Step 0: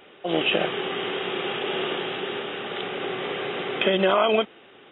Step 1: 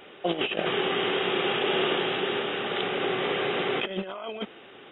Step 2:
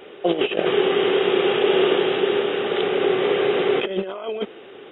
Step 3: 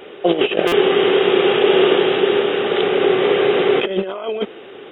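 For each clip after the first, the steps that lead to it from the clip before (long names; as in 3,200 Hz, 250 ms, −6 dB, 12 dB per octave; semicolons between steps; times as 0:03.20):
compressor whose output falls as the input rises −26 dBFS, ratio −0.5
parametric band 420 Hz +9 dB 0.84 octaves; level +2 dB
buffer that repeats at 0:00.67, samples 256, times 8; level +4.5 dB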